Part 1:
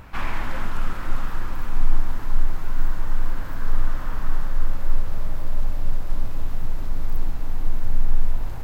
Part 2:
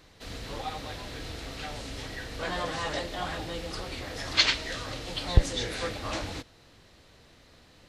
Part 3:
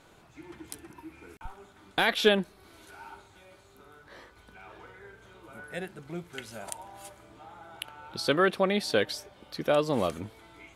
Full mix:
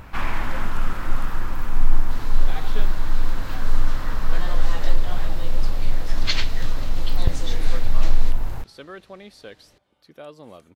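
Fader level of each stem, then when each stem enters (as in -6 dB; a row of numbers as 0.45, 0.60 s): +2.0, -3.0, -15.5 dB; 0.00, 1.90, 0.50 s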